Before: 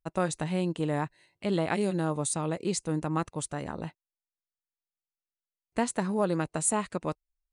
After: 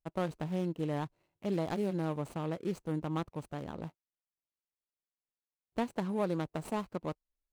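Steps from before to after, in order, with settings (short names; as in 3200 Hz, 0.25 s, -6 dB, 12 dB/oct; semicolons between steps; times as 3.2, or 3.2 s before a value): median filter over 25 samples; gain -4.5 dB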